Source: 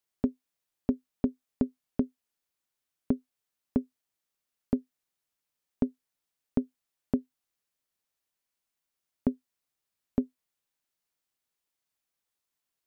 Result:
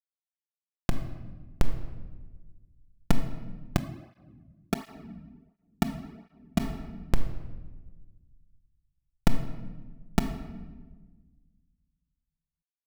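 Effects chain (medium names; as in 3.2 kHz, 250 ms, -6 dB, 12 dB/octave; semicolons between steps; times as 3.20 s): recorder AGC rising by 40 dB/s; Chebyshev low-pass 1.3 kHz, order 2; Schmitt trigger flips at -1 dBFS; simulated room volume 940 m³, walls mixed, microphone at 0.83 m; 3.79–6.60 s: cancelling through-zero flanger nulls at 1.4 Hz, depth 2.8 ms; trim +1.5 dB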